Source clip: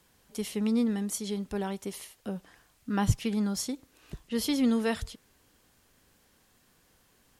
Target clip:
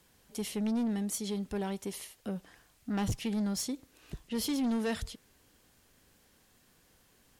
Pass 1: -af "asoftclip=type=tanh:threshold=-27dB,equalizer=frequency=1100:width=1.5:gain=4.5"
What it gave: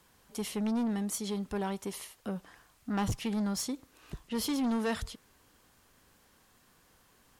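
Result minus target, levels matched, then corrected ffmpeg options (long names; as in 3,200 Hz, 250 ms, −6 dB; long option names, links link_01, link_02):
1,000 Hz band +3.5 dB
-af "asoftclip=type=tanh:threshold=-27dB,equalizer=frequency=1100:width=1.5:gain=-2"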